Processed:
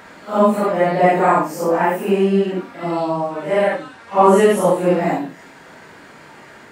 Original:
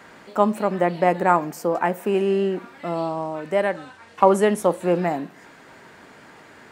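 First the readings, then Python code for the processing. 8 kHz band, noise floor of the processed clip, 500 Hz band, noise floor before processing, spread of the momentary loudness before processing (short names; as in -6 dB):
+5.0 dB, -42 dBFS, +5.0 dB, -48 dBFS, 11 LU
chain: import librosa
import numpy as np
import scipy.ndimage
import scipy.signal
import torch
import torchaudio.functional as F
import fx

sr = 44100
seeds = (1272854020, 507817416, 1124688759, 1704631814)

y = fx.phase_scramble(x, sr, seeds[0], window_ms=200)
y = y * 10.0 ** (5.0 / 20.0)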